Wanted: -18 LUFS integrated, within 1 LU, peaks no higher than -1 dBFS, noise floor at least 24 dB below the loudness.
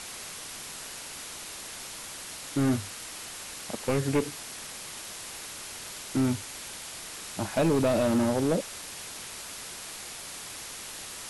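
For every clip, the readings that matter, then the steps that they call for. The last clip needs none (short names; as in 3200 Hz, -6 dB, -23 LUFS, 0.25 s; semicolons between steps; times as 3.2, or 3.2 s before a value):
clipped 1.4%; flat tops at -19.5 dBFS; noise floor -41 dBFS; noise floor target -56 dBFS; loudness -32.0 LUFS; peak -19.5 dBFS; loudness target -18.0 LUFS
-> clip repair -19.5 dBFS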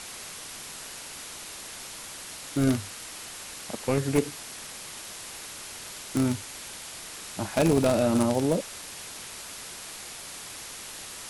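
clipped 0.0%; noise floor -41 dBFS; noise floor target -55 dBFS
-> denoiser 14 dB, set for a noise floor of -41 dBFS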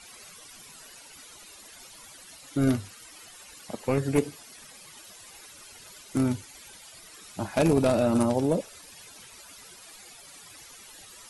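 noise floor -49 dBFS; noise floor target -51 dBFS
-> denoiser 6 dB, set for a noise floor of -49 dBFS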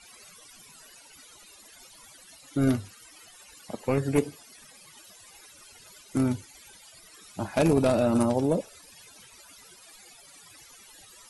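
noise floor -53 dBFS; loudness -26.5 LUFS; peak -10.0 dBFS; loudness target -18.0 LUFS
-> gain +8.5 dB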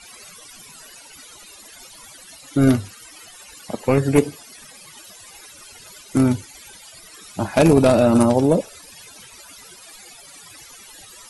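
loudness -18.0 LUFS; peak -1.5 dBFS; noise floor -44 dBFS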